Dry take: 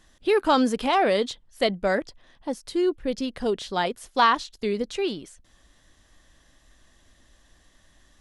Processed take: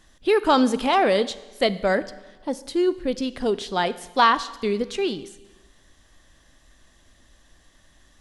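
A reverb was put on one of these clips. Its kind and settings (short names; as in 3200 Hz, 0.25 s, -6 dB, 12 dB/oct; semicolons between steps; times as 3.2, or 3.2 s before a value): Schroeder reverb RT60 1.2 s, combs from 31 ms, DRR 15.5 dB; gain +2 dB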